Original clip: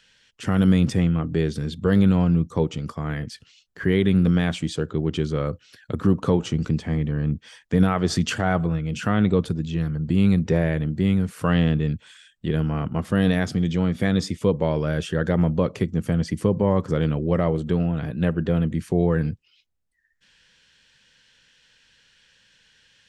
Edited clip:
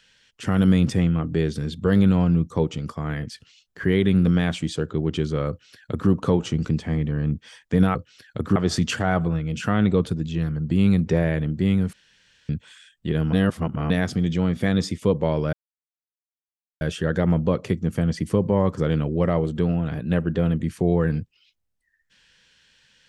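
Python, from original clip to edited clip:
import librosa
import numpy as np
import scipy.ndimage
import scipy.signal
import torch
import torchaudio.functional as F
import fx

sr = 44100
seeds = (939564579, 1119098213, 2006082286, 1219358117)

y = fx.edit(x, sr, fx.duplicate(start_s=5.49, length_s=0.61, to_s=7.95),
    fx.room_tone_fill(start_s=11.32, length_s=0.56),
    fx.reverse_span(start_s=12.72, length_s=0.57),
    fx.insert_silence(at_s=14.92, length_s=1.28), tone=tone)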